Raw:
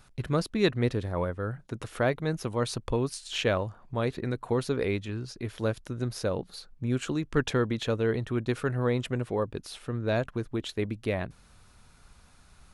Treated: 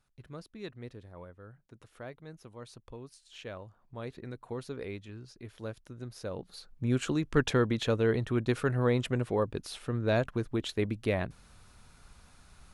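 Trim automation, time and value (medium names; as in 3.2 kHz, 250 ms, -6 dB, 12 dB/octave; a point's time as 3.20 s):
3.32 s -18 dB
4.11 s -11 dB
6.14 s -11 dB
6.87 s 0 dB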